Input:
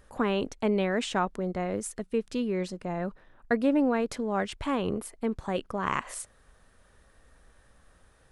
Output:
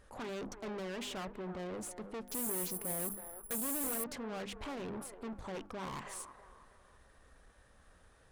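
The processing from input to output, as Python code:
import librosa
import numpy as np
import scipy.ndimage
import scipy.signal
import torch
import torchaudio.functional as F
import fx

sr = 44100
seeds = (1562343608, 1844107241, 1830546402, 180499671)

y = fx.hum_notches(x, sr, base_hz=50, count=7)
y = fx.tube_stage(y, sr, drive_db=38.0, bias=0.35)
y = fx.echo_wet_bandpass(y, sr, ms=323, feedback_pct=40, hz=760.0, wet_db=-9)
y = fx.resample_bad(y, sr, factor=4, down='none', up='zero_stuff', at=(2.28, 4.04))
y = fx.doppler_dist(y, sr, depth_ms=0.26)
y = F.gain(torch.from_numpy(y), -1.5).numpy()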